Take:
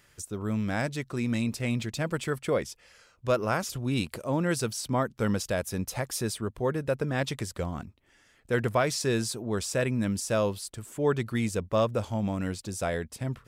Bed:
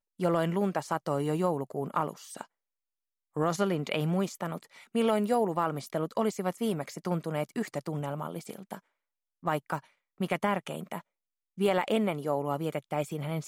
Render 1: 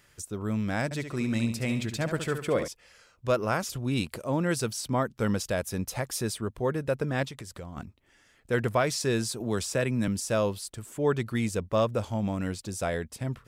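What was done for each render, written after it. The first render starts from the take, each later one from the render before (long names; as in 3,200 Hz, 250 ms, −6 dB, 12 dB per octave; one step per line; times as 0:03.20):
0:00.84–0:02.68: flutter between parallel walls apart 12 metres, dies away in 0.49 s
0:07.26–0:07.77: downward compressor 4 to 1, threshold −38 dBFS
0:09.40–0:10.08: multiband upward and downward compressor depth 40%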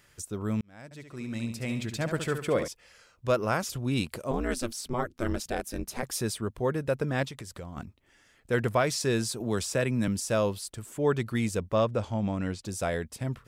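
0:00.61–0:02.19: fade in
0:04.31–0:06.03: ring modulation 120 Hz
0:11.73–0:12.65: high-frequency loss of the air 56 metres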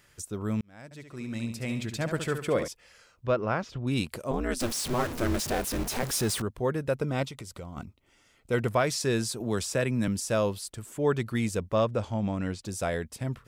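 0:03.26–0:03.87: high-frequency loss of the air 220 metres
0:04.60–0:06.42: converter with a step at zero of −30 dBFS
0:06.99–0:08.67: Butterworth band-reject 1,700 Hz, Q 6.5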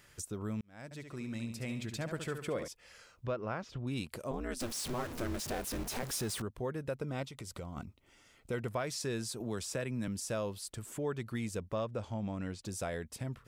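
downward compressor 2 to 1, threshold −41 dBFS, peak gain reduction 11.5 dB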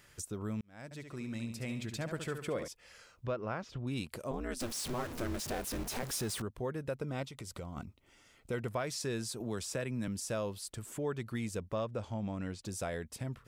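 no processing that can be heard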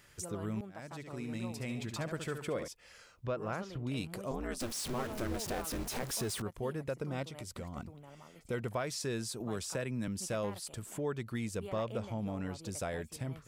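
mix in bed −19.5 dB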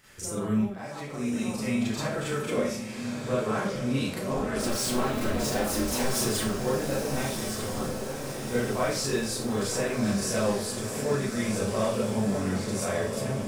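on a send: feedback delay with all-pass diffusion 1,227 ms, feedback 61%, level −6.5 dB
on the sum: four-comb reverb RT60 0.38 s, combs from 29 ms, DRR −8 dB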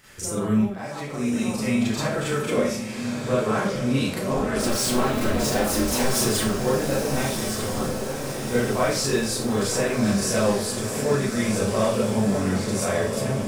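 level +5 dB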